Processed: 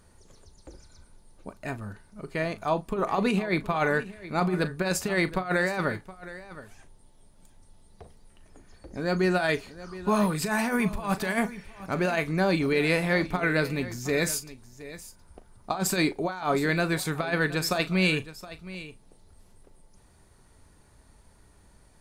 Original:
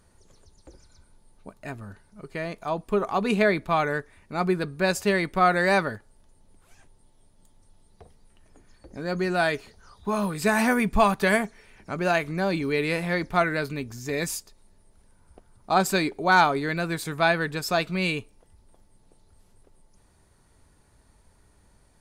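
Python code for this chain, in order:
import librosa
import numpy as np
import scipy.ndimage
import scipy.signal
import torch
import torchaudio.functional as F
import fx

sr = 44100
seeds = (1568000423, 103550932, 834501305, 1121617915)

y = fx.over_compress(x, sr, threshold_db=-24.0, ratio=-0.5)
y = fx.doubler(y, sr, ms=38.0, db=-13.5)
y = y + 10.0 ** (-16.0 / 20.0) * np.pad(y, (int(719 * sr / 1000.0), 0))[:len(y)]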